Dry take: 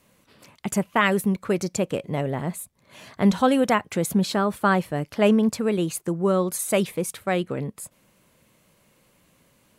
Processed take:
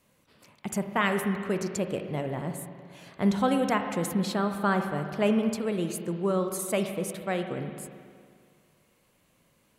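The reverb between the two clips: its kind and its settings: spring tank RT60 2.1 s, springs 40/53 ms, chirp 30 ms, DRR 6 dB; trim -6 dB

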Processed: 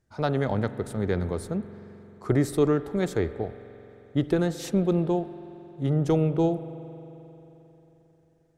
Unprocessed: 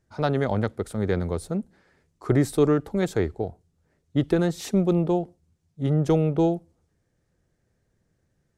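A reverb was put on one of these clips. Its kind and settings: spring tank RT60 3.7 s, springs 44 ms, chirp 60 ms, DRR 12.5 dB; trim -2 dB

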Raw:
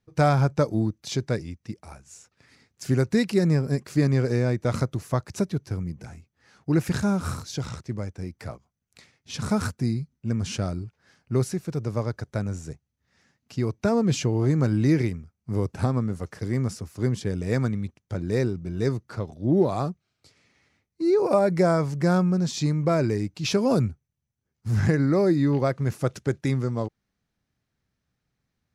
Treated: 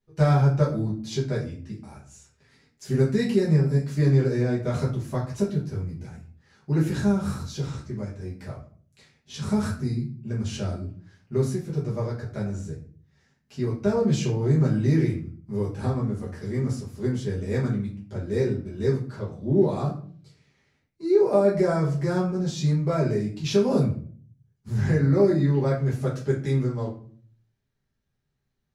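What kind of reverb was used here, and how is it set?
simulated room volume 39 m³, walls mixed, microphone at 1.3 m; trim -10.5 dB

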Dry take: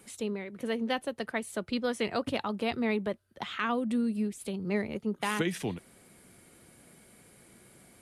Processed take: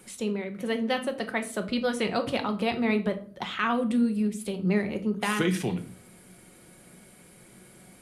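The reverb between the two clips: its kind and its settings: simulated room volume 420 m³, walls furnished, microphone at 0.99 m; trim +3 dB

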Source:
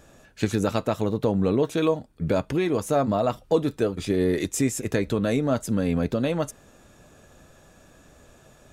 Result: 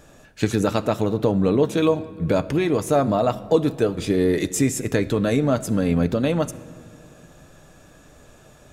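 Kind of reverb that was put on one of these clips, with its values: simulated room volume 3000 m³, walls mixed, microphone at 0.43 m; trim +3 dB

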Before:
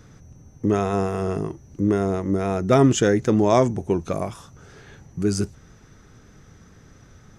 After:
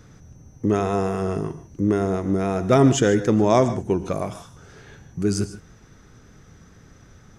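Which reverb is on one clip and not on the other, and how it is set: gated-style reverb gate 170 ms rising, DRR 11.5 dB

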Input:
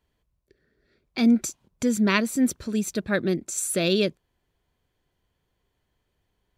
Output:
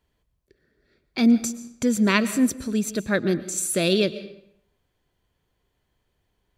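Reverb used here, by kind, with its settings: algorithmic reverb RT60 0.7 s, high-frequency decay 0.85×, pre-delay 85 ms, DRR 14 dB; trim +1.5 dB

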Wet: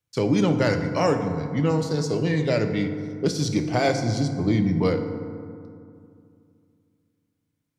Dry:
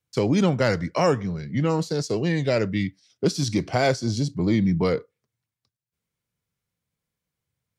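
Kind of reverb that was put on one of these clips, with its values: FDN reverb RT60 2.4 s, low-frequency decay 1.25×, high-frequency decay 0.4×, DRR 6 dB; trim -1.5 dB

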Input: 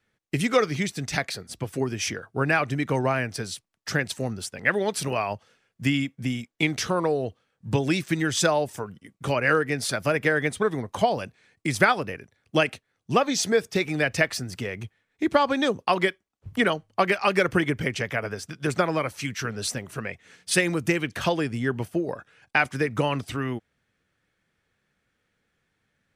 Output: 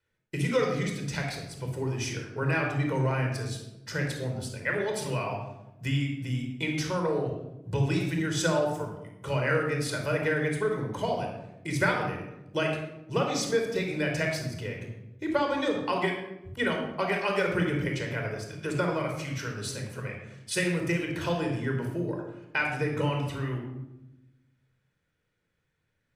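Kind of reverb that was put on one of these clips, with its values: simulated room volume 3400 m³, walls furnished, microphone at 4.8 m; trim -9.5 dB

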